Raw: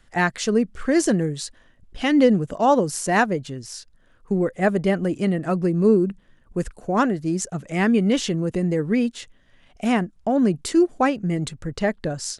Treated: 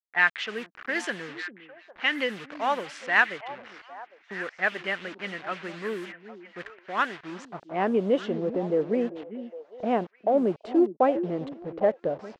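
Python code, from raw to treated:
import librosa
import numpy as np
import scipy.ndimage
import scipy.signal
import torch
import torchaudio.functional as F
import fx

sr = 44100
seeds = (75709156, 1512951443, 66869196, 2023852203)

y = fx.delta_hold(x, sr, step_db=-31.0)
y = fx.env_lowpass(y, sr, base_hz=2100.0, full_db=-13.5)
y = fx.dynamic_eq(y, sr, hz=3100.0, q=2.0, threshold_db=-46.0, ratio=4.0, max_db=7)
y = fx.filter_sweep_bandpass(y, sr, from_hz=1800.0, to_hz=560.0, start_s=7.11, end_s=7.96, q=1.8)
y = fx.echo_stepped(y, sr, ms=403, hz=270.0, octaves=1.4, feedback_pct=70, wet_db=-9.0)
y = y * librosa.db_to_amplitude(2.5)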